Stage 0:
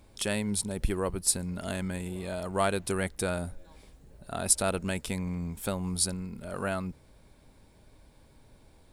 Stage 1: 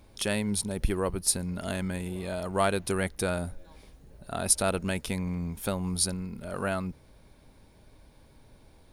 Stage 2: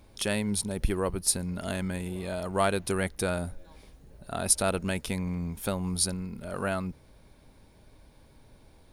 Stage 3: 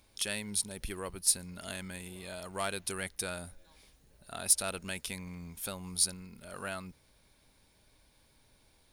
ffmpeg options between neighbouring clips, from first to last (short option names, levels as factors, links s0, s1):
-af "bandreject=f=7700:w=5.6,volume=1.19"
-af anull
-af "asoftclip=type=tanh:threshold=0.188,tiltshelf=f=1400:g=-6.5,volume=0.501"